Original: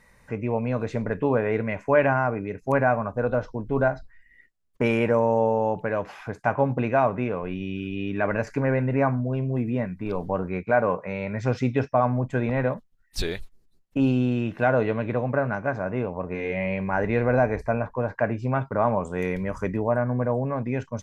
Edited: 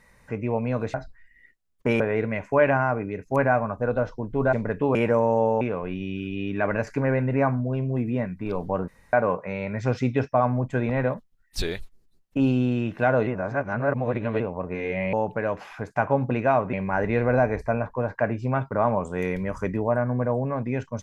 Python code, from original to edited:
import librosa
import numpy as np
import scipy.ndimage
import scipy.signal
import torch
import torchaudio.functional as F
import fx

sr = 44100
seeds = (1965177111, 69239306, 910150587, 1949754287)

y = fx.edit(x, sr, fx.swap(start_s=0.94, length_s=0.42, other_s=3.89, other_length_s=1.06),
    fx.move(start_s=5.61, length_s=1.6, to_s=16.73),
    fx.room_tone_fill(start_s=10.48, length_s=0.25),
    fx.reverse_span(start_s=14.87, length_s=1.13), tone=tone)